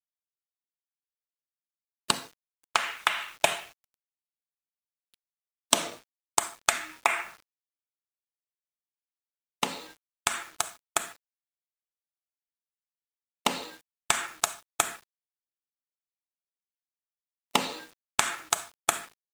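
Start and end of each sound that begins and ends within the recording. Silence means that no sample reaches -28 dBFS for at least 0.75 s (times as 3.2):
2.1–3.57
5.73–7.22
9.63–11.04
13.46–14.89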